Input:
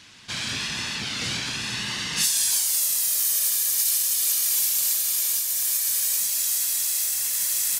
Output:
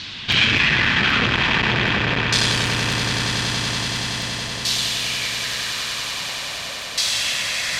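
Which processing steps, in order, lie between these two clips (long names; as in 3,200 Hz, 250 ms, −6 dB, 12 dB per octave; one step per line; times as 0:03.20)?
low-shelf EQ 150 Hz +7.5 dB
in parallel at +0.5 dB: compressor whose output falls as the input rises −26 dBFS, ratio −0.5
on the sum: auto-filter low-pass saw down 0.43 Hz 480–4,200 Hz
on a send: echo that builds up and dies away 94 ms, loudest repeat 8, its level −11 dB
on the sum: regular buffer underruns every 0.26 s, samples 64, repeat, from 0:00.32
saturating transformer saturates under 1,200 Hz
level +4.5 dB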